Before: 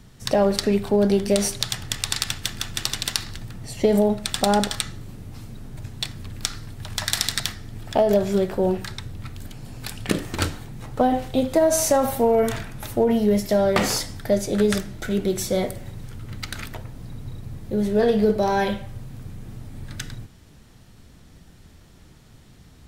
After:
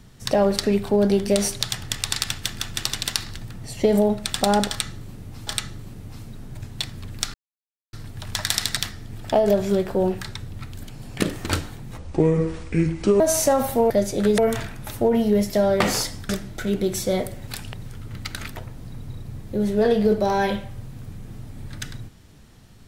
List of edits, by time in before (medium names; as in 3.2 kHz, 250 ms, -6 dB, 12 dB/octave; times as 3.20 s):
4.69–5.47 s: loop, 2 plays
6.56 s: insert silence 0.59 s
9.80–10.06 s: move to 15.91 s
10.87–11.64 s: speed 63%
14.25–14.73 s: move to 12.34 s